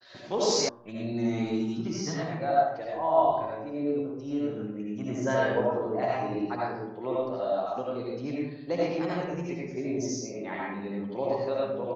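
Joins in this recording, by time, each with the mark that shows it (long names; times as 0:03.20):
0:00.69: cut off before it has died away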